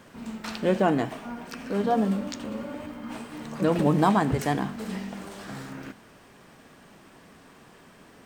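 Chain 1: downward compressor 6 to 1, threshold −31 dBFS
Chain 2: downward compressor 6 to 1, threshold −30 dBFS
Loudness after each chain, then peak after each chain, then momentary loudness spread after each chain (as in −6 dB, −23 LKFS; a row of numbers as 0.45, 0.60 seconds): −36.5, −36.0 LKFS; −17.5, −17.0 dBFS; 18, 19 LU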